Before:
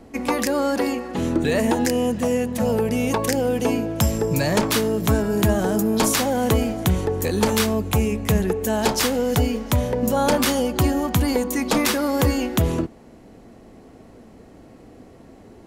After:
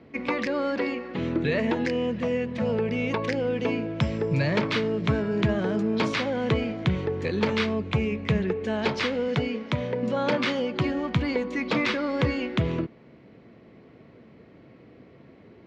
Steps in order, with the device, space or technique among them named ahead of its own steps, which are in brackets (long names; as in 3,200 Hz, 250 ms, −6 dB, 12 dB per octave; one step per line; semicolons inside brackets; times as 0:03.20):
guitar cabinet (loudspeaker in its box 100–4,100 Hz, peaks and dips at 140 Hz +6 dB, 260 Hz −3 dB, 780 Hz −8 dB, 2,200 Hz +6 dB)
0:09.28–0:10.89: high-pass filter 120 Hz 12 dB per octave
level −4 dB